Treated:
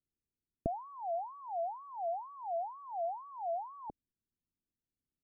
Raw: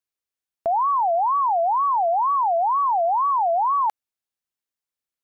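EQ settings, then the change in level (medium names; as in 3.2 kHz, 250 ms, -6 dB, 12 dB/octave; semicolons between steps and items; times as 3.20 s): four-pole ladder low-pass 380 Hz, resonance 25%; tilt EQ -2 dB/octave; +9.5 dB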